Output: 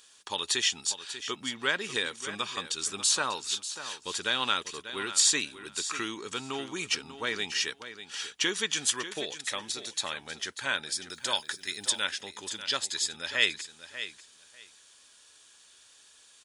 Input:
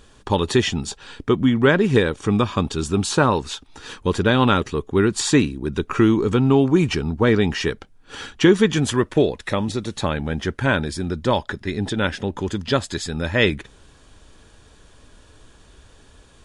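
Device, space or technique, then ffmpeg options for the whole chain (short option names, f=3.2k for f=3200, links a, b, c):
filter by subtraction: -filter_complex "[0:a]asettb=1/sr,asplit=3[a][b][c];[a]atrim=end=11.104[d];[b]atrim=start=11.1:end=12.04,asetpts=PTS-STARTPTS,afade=t=in:d=0.004:c=qsin,afade=t=out:st=0.936:d=0.004:c=qsin,aemphasis=mode=production:type=50fm[e];[c]atrim=start=12.036[f];[d][e]acrossfade=d=0.004:c1=hsin:c2=qsin[g];[g][f]acrossfade=d=0.004:c1=qsin:c2=hsin,aecho=1:1:592|1184:0.251|0.0402,asplit=2[h][i];[i]lowpass=2.8k,volume=-1[j];[h][j]amix=inputs=2:normalize=0,bass=f=250:g=0,treble=f=4k:g=9,volume=-6.5dB"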